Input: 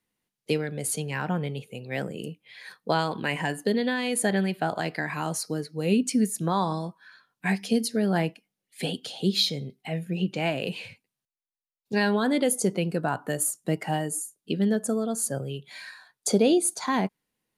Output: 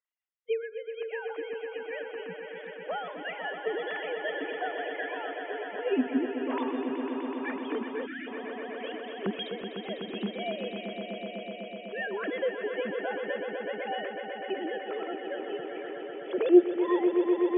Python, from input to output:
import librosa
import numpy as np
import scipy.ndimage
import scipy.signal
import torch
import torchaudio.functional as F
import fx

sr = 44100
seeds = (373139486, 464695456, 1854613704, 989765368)

y = fx.sine_speech(x, sr)
y = fx.echo_swell(y, sr, ms=125, loudest=5, wet_db=-9)
y = fx.spec_box(y, sr, start_s=8.06, length_s=0.21, low_hz=350.0, high_hz=1300.0, gain_db=-26)
y = y * 10.0 ** (-6.5 / 20.0)